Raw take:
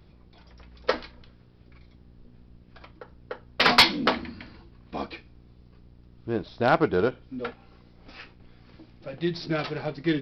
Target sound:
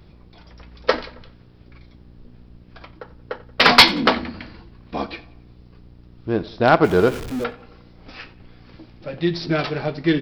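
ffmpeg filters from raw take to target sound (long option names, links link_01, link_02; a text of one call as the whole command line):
ffmpeg -i in.wav -filter_complex "[0:a]asettb=1/sr,asplit=3[link_01][link_02][link_03];[link_01]atrim=end=6.844[link_04];[link_02]atrim=start=6.84:end=7.44,asetpts=PTS-STARTPTS,afade=type=in:duration=0.004:curve=qsin,afade=type=out:start_time=0.596:duration=0.004:curve=qsin,aeval=exprs='val(0)+0.5*0.02*sgn(val(0))':channel_layout=same[link_05];[link_03]atrim=start=7.436[link_06];[link_04][link_05]acrossfade=duration=0.004:curve1=hsin:curve2=qsin[link_07];[link_07][link_06]acrossfade=duration=0.004:curve1=qsin:curve2=hsin,asplit=2[link_08][link_09];[link_09]adelay=90,lowpass=frequency=4100:poles=1,volume=-19dB,asplit=2[link_10][link_11];[link_11]adelay=90,lowpass=frequency=4100:poles=1,volume=0.51,asplit=2[link_12][link_13];[link_13]adelay=90,lowpass=frequency=4100:poles=1,volume=0.51,asplit=2[link_14][link_15];[link_15]adelay=90,lowpass=frequency=4100:poles=1,volume=0.51[link_16];[link_08][link_10][link_12][link_14][link_16]amix=inputs=5:normalize=0,volume=6.5dB" out.wav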